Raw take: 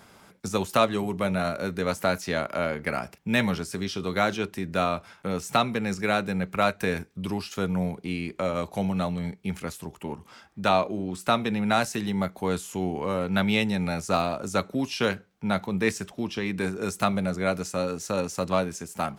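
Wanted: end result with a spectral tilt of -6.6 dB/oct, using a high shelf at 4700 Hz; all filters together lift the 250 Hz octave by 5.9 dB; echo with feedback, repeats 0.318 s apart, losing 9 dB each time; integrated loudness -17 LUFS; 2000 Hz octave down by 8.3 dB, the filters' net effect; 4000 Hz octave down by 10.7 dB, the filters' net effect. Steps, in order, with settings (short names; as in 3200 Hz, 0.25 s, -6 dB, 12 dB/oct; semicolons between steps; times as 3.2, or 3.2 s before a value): bell 250 Hz +8 dB; bell 2000 Hz -9 dB; bell 4000 Hz -8.5 dB; high shelf 4700 Hz -3.5 dB; feedback echo 0.318 s, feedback 35%, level -9 dB; gain +8 dB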